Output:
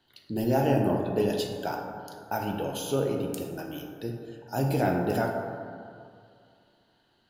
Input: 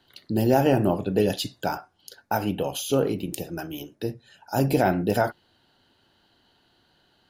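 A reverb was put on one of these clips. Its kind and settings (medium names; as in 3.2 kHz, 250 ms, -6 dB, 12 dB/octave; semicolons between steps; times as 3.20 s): plate-style reverb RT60 2.3 s, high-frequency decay 0.35×, DRR 1.5 dB; trim -6.5 dB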